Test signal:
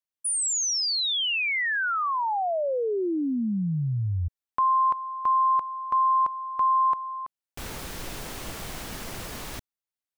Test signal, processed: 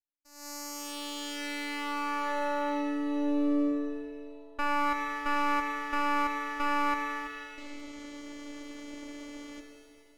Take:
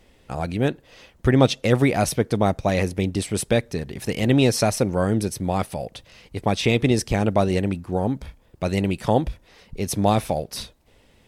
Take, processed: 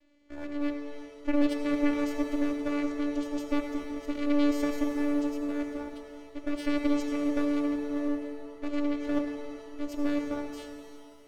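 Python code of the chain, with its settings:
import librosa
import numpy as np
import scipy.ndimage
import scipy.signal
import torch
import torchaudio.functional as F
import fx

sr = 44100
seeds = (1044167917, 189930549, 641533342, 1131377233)

y = fx.dynamic_eq(x, sr, hz=380.0, q=0.77, threshold_db=-28.0, ratio=4.0, max_db=-3)
y = fx.vocoder(y, sr, bands=8, carrier='saw', carrier_hz=290.0)
y = np.maximum(y, 0.0)
y = fx.rev_shimmer(y, sr, seeds[0], rt60_s=2.2, semitones=7, shimmer_db=-8, drr_db=4.5)
y = y * 10.0 ** (-3.5 / 20.0)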